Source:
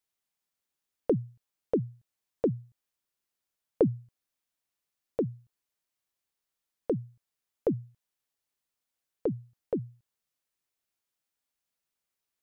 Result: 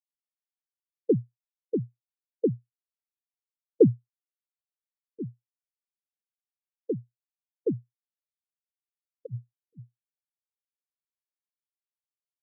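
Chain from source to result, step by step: 9.26–9.80 s: compressor with a negative ratio -37 dBFS, ratio -1; LFO notch sine 0.91 Hz 550–2000 Hz; spectral contrast expander 2.5:1; trim +6.5 dB

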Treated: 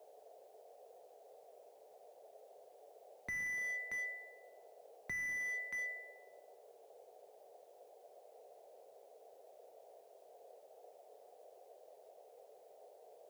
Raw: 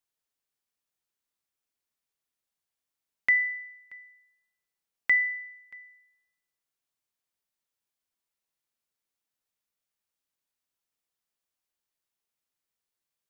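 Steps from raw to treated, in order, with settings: compression 4:1, threshold -39 dBFS, peak gain reduction 16.5 dB; band noise 420–740 Hz -71 dBFS; high-pass 100 Hz 24 dB/octave; short-mantissa float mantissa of 4-bit; slew-rate limiter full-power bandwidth 6.4 Hz; trim +11 dB

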